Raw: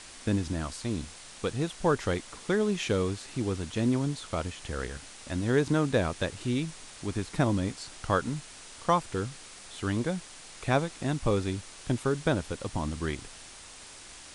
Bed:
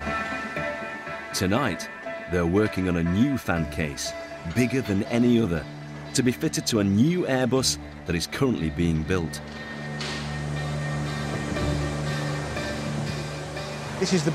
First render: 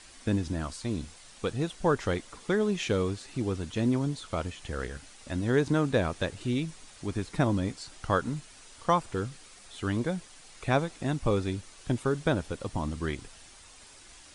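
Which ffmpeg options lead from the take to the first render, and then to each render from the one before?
-af "afftdn=nr=7:nf=-48"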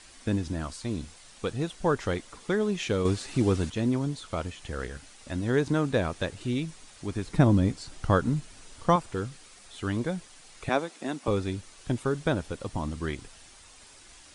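-filter_complex "[0:a]asettb=1/sr,asplit=3[a][b][c];[a]atrim=end=3.054[d];[b]atrim=start=3.05:end=3.7,asetpts=PTS-STARTPTS,afade=t=in:d=0.004:c=qsin,afade=t=out:st=0.646:d=0.004:c=qsin,acontrast=70[e];[c]atrim=start=3.696[f];[d][e]acrossfade=d=0.004:c1=hsin:c2=qsin[g];[g][f]acrossfade=d=0.004:c1=qsin:c2=hsin,asettb=1/sr,asplit=3[h][i][j];[h]atrim=end=7.264[k];[i]atrim=start=7.26:end=8.96,asetpts=PTS-STARTPTS,afade=t=in:d=0.004:c=qsin,afade=t=out:st=1.696:d=0.004:c=qsin,lowshelf=f=400:g=8[l];[j]atrim=start=8.956[m];[k][l]acrossfade=d=0.004:c1=hsin:c2=qsin[n];[n][m]acrossfade=d=0.004:c1=qsin:c2=hsin,asettb=1/sr,asplit=3[o][p][q];[o]atrim=end=10.694[r];[p]atrim=start=10.69:end=11.28,asetpts=PTS-STARTPTS,afade=t=in:d=0.004:c=qsin,afade=t=out:st=0.586:d=0.004:c=qsin,highpass=f=220:w=0.5412,highpass=f=220:w=1.3066[s];[q]atrim=start=11.276[t];[r][s]acrossfade=d=0.004:c1=hsin:c2=qsin[u];[u][t]acrossfade=d=0.004:c1=qsin:c2=hsin"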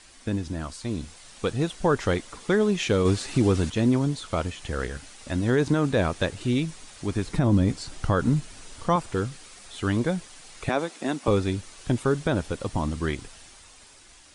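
-af "alimiter=limit=-16.5dB:level=0:latency=1:release=42,dynaudnorm=f=240:g=9:m=5dB"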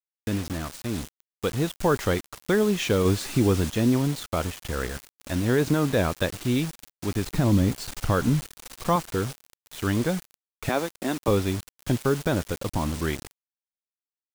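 -af "acrusher=bits=5:mix=0:aa=0.000001"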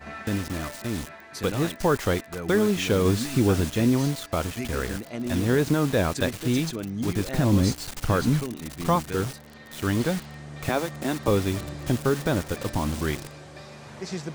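-filter_complex "[1:a]volume=-10.5dB[a];[0:a][a]amix=inputs=2:normalize=0"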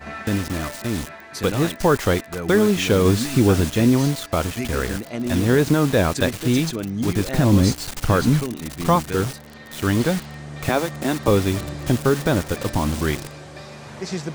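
-af "volume=5dB"

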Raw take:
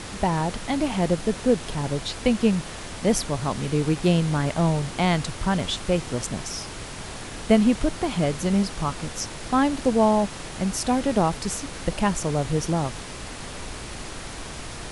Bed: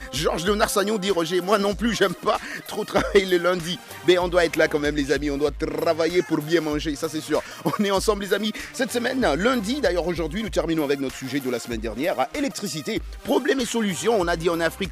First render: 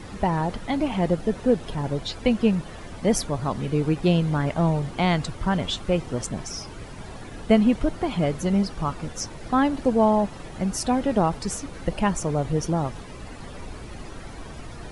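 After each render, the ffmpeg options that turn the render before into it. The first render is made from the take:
-af "afftdn=nr=12:nf=-37"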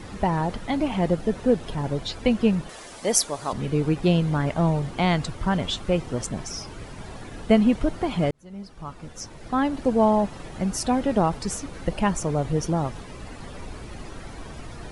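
-filter_complex "[0:a]asettb=1/sr,asplit=3[a][b][c];[a]atrim=end=2.694[d];[b]atrim=start=2.69:end=3.53,asetpts=PTS-STARTPTS,afade=t=in:d=0.004:c=qsin,afade=t=out:st=0.836:d=0.004:c=qsin,bass=f=250:g=-15,treble=f=4k:g=9[e];[c]atrim=start=3.526[f];[d][e]acrossfade=d=0.004:c1=hsin:c2=qsin[g];[g][f]acrossfade=d=0.004:c1=qsin:c2=hsin,asplit=2[h][i];[h]atrim=end=8.31,asetpts=PTS-STARTPTS,afade=t=out:st=8.306:d=0.004:c=hsin[j];[i]atrim=start=8.31,asetpts=PTS-STARTPTS,afade=t=in:d=1.72[k];[j][k]concat=n=2:v=0:a=1"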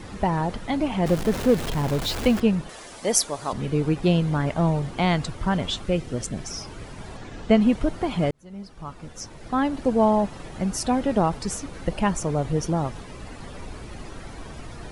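-filter_complex "[0:a]asettb=1/sr,asplit=3[a][b][c];[a]atrim=end=1.064[d];[b]atrim=start=1.06:end=2.4,asetpts=PTS-STARTPTS,afade=t=in:d=0.004:c=qsin,afade=t=out:st=1.336:d=0.004:c=qsin,aeval=exprs='val(0)+0.5*0.0473*sgn(val(0))':c=same[e];[c]atrim=start=2.396[f];[d][e]acrossfade=d=0.004:c1=hsin:c2=qsin[g];[g][f]acrossfade=d=0.004:c1=qsin:c2=hsin,asettb=1/sr,asplit=3[h][i][j];[h]atrim=end=5.864[k];[i]atrim=start=5.86:end=6.45,asetpts=PTS-STARTPTS,afade=t=in:d=0.004:c=qsin,afade=t=out:st=0.586:d=0.004:c=qsin,equalizer=f=960:w=1.7:g=-8[l];[j]atrim=start=6.446[m];[k][l]acrossfade=d=0.004:c1=hsin:c2=qsin[n];[n][m]acrossfade=d=0.004:c1=qsin:c2=hsin,asettb=1/sr,asplit=3[o][p][q];[o]atrim=end=7.174[r];[p]atrim=start=7.17:end=7.61,asetpts=PTS-STARTPTS,afade=t=in:d=0.004:c=qsin,afade=t=out:st=0.436:d=0.004:c=qsin,lowpass=f=7.7k:w=0.5412,lowpass=f=7.7k:w=1.3066[s];[q]atrim=start=7.606[t];[r][s]acrossfade=d=0.004:c1=hsin:c2=qsin[u];[u][t]acrossfade=d=0.004:c1=qsin:c2=hsin"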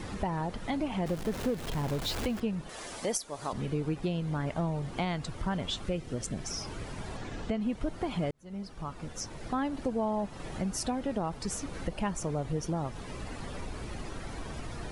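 -af "alimiter=limit=-12dB:level=0:latency=1:release=394,acompressor=threshold=-35dB:ratio=2"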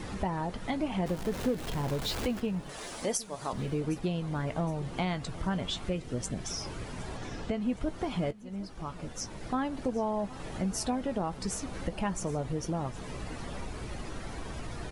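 -filter_complex "[0:a]asplit=2[a][b];[b]adelay=16,volume=-12.5dB[c];[a][c]amix=inputs=2:normalize=0,aecho=1:1:765|1530|2295:0.112|0.0494|0.0217"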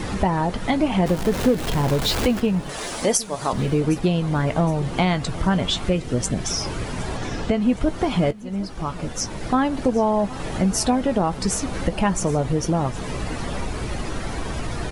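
-af "volume=11.5dB"

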